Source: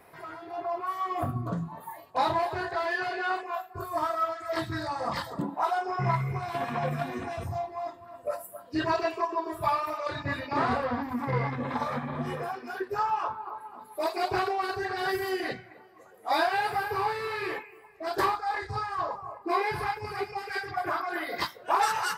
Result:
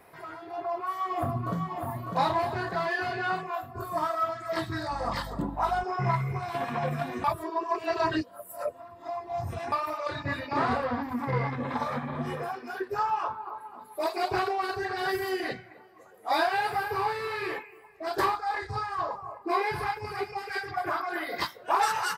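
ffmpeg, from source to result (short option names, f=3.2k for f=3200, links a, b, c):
-filter_complex "[0:a]asplit=2[a][b];[b]afade=t=in:st=0.5:d=0.01,afade=t=out:st=1.69:d=0.01,aecho=0:1:600|1200|1800|2400|3000|3600|4200|4800|5400|6000:0.530884|0.345075|0.224299|0.145794|0.0947662|0.061598|0.0400387|0.0260252|0.0169164|0.0109956[c];[a][c]amix=inputs=2:normalize=0,asettb=1/sr,asplit=3[d][e][f];[d]atrim=end=4.914[g];[e]atrim=start=4.91:end=5.84,asetpts=PTS-STARTPTS,afade=t=in:d=0.004:c=qsin,afade=t=out:st=0.926:d=0.004:c=qsin,aeval=exprs='val(0)+0.0112*(sin(2*PI*50*n/s)+sin(2*PI*2*50*n/s)/2+sin(2*PI*3*50*n/s)/3+sin(2*PI*4*50*n/s)/4+sin(2*PI*5*50*n/s)/5)':c=same[h];[f]atrim=start=5.836[i];[g][h]acrossfade=d=0.004:c1=hsin:c2=qsin[j];[j][i]acrossfade=d=0.004:c1=qsin:c2=hsin,asplit=3[k][l][m];[k]atrim=end=7.242[n];[l]atrim=start=7.238:end=9.722,asetpts=PTS-STARTPTS,areverse[o];[m]atrim=start=9.718[p];[n][o]acrossfade=d=0.004:c1=hsin:c2=hsin[q];[q][p]acrossfade=d=0.004:c1=hsin:c2=hsin"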